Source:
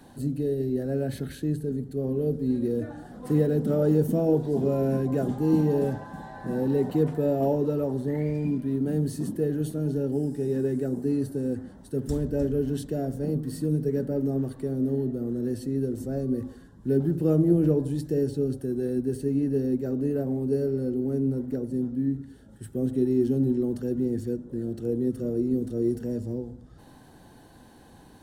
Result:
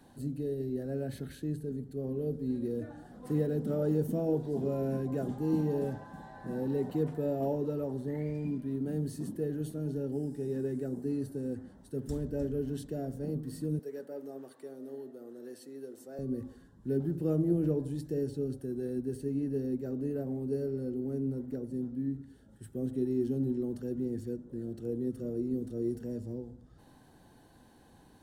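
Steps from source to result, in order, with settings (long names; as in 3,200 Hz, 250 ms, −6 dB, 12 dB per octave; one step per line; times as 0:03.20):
0:13.79–0:16.19: high-pass filter 520 Hz 12 dB per octave
level −7.5 dB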